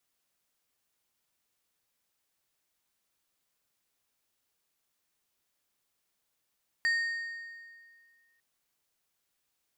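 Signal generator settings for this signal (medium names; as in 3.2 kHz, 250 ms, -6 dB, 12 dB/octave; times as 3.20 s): metal hit plate, lowest mode 1.85 kHz, decay 1.98 s, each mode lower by 11 dB, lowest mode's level -23.5 dB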